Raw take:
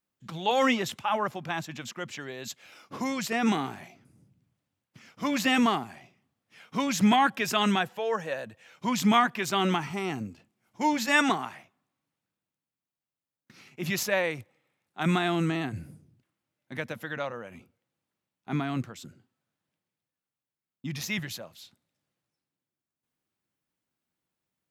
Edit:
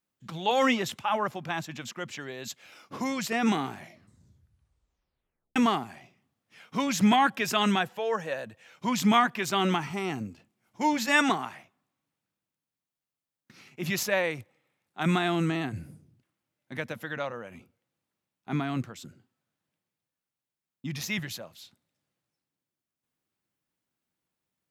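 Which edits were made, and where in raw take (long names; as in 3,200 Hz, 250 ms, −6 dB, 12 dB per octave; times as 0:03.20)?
0:03.78: tape stop 1.78 s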